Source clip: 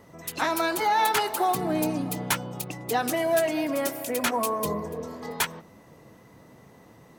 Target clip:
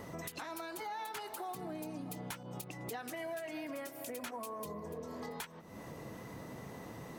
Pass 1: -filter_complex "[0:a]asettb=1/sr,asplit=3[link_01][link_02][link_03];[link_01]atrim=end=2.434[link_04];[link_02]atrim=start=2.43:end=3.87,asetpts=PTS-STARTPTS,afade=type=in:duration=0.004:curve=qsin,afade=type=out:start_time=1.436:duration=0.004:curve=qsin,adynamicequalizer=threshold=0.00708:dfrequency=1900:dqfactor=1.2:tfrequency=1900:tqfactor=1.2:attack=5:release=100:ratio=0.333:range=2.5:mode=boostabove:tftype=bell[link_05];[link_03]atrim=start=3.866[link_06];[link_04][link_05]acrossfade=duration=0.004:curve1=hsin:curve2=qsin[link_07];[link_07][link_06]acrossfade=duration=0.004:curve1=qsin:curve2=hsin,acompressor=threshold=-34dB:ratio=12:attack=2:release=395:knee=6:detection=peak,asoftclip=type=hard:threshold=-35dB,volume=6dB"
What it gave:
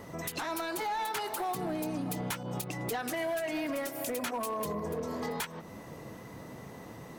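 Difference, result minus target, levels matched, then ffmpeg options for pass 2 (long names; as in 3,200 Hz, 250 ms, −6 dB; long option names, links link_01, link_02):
downward compressor: peak gain reduction −9 dB
-filter_complex "[0:a]asettb=1/sr,asplit=3[link_01][link_02][link_03];[link_01]atrim=end=2.434[link_04];[link_02]atrim=start=2.43:end=3.87,asetpts=PTS-STARTPTS,afade=type=in:duration=0.004:curve=qsin,afade=type=out:start_time=1.436:duration=0.004:curve=qsin,adynamicequalizer=threshold=0.00708:dfrequency=1900:dqfactor=1.2:tfrequency=1900:tqfactor=1.2:attack=5:release=100:ratio=0.333:range=2.5:mode=boostabove:tftype=bell[link_05];[link_03]atrim=start=3.866[link_06];[link_04][link_05]acrossfade=duration=0.004:curve1=hsin:curve2=qsin[link_07];[link_07][link_06]acrossfade=duration=0.004:curve1=qsin:curve2=hsin,acompressor=threshold=-44dB:ratio=12:attack=2:release=395:knee=6:detection=peak,asoftclip=type=hard:threshold=-35dB,volume=6dB"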